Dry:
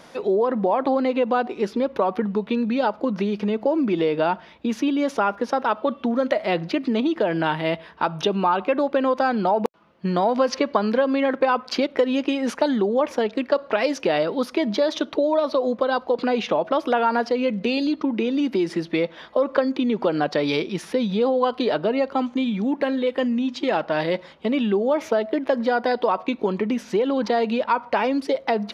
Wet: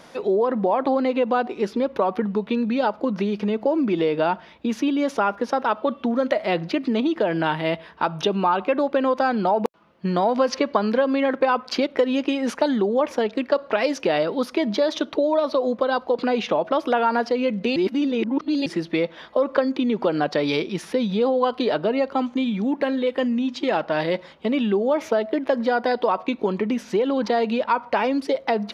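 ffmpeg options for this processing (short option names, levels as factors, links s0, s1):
-filter_complex "[0:a]asplit=3[s0][s1][s2];[s0]atrim=end=17.762[s3];[s1]atrim=start=17.758:end=18.662,asetpts=PTS-STARTPTS,areverse[s4];[s2]atrim=start=18.658[s5];[s3][s4]acrossfade=d=0.004:c1=hsin:c2=hsin[s6];[s6][s5]acrossfade=d=0.004:c1=hsin:c2=hsin"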